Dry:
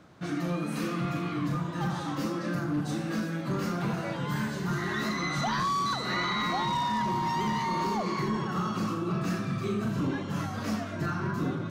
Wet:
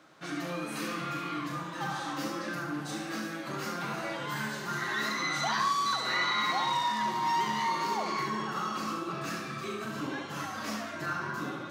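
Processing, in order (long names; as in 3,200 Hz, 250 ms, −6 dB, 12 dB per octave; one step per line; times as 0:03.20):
high-pass filter 850 Hz 6 dB per octave
flutter between parallel walls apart 11.9 metres, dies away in 0.53 s
on a send at −12 dB: convolution reverb RT60 0.15 s, pre-delay 3 ms
on the sum: level +1.5 dB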